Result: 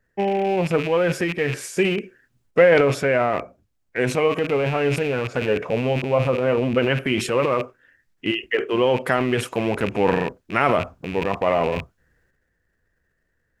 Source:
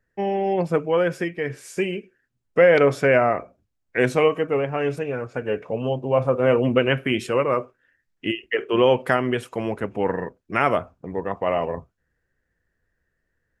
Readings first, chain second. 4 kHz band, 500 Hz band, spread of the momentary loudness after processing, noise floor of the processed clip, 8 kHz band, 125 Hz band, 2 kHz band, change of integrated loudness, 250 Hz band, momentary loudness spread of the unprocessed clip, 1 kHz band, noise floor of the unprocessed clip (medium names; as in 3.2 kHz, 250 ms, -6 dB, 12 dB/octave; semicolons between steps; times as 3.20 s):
+2.5 dB, +0.5 dB, 6 LU, -71 dBFS, no reading, +2.5 dB, +1.5 dB, +1.0 dB, +1.5 dB, 11 LU, +1.0 dB, -76 dBFS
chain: rattle on loud lows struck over -38 dBFS, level -26 dBFS; gain riding within 3 dB 0.5 s; transient shaper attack +1 dB, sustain +8 dB